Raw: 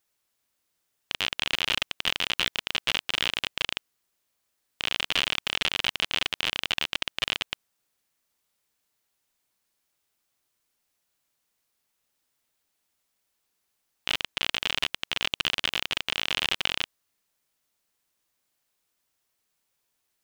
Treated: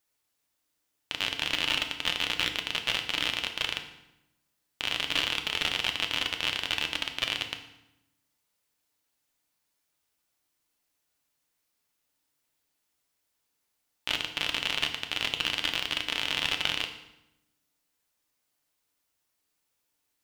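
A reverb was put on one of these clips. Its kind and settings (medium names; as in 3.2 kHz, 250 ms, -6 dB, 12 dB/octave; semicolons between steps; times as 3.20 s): FDN reverb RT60 0.88 s, low-frequency decay 1.35×, high-frequency decay 0.85×, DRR 4.5 dB; trim -2.5 dB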